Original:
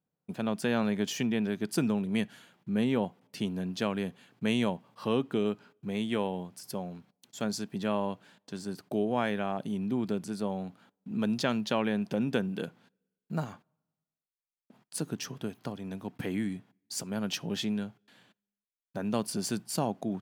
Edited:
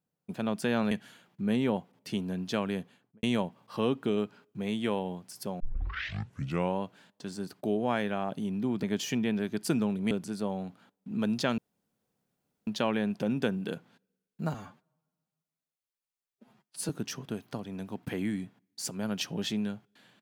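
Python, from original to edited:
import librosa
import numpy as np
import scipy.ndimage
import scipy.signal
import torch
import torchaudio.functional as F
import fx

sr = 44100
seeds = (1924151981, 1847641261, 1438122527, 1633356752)

y = fx.studio_fade_out(x, sr, start_s=4.05, length_s=0.46)
y = fx.edit(y, sr, fx.move(start_s=0.91, length_s=1.28, to_s=10.11),
    fx.tape_start(start_s=6.88, length_s=1.2),
    fx.insert_room_tone(at_s=11.58, length_s=1.09),
    fx.stretch_span(start_s=13.45, length_s=1.57, factor=1.5), tone=tone)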